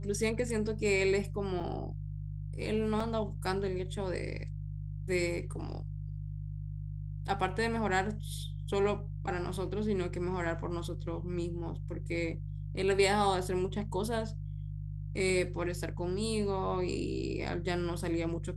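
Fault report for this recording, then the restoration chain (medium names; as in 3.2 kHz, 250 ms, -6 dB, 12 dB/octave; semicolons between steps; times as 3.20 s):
hum 50 Hz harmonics 3 -39 dBFS
1.60 s: dropout 4.9 ms
3.00 s: dropout 4.2 ms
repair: de-hum 50 Hz, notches 3; interpolate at 1.60 s, 4.9 ms; interpolate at 3.00 s, 4.2 ms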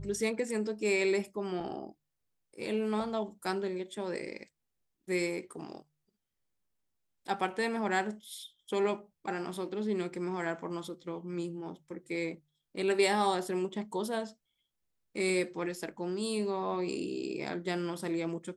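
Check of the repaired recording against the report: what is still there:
nothing left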